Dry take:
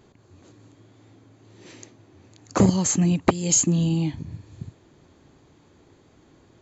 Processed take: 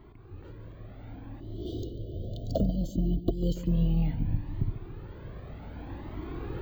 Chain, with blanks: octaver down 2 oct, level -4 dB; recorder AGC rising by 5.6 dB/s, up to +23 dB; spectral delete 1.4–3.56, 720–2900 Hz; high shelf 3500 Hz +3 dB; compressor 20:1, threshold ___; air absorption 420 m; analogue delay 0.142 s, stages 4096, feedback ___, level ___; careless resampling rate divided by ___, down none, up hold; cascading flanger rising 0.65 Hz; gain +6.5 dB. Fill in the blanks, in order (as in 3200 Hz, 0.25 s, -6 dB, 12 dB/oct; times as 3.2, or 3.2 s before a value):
-24 dBFS, 62%, -14 dB, 2×